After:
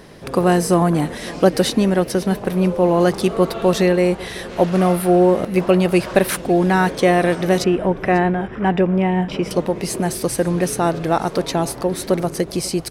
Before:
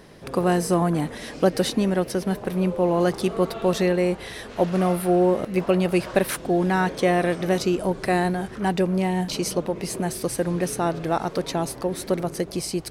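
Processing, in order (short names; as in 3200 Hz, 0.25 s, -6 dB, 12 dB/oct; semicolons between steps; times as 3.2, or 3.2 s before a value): 7.64–9.51 polynomial smoothing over 25 samples; echo 0.544 s -21 dB; gain +5.5 dB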